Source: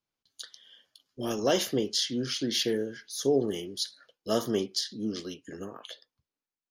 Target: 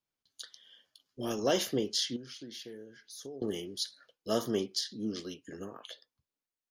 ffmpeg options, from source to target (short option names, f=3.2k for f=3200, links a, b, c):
-filter_complex "[0:a]asettb=1/sr,asplit=3[a][b][c];[a]atrim=end=2.164[d];[b]atrim=start=2.16:end=3.42,asetpts=PTS-STARTPTS,afade=t=in:d=0.004:c=qsin,afade=t=out:st=1.256:d=0.004:c=qsin,acompressor=threshold=-45dB:ratio=3[e];[c]atrim=start=3.416[f];[d][e]acrossfade=d=0.004:c1=hsin:c2=qsin[g];[g][f]acrossfade=d=0.004:c1=qsin:c2=hsin,volume=-3dB"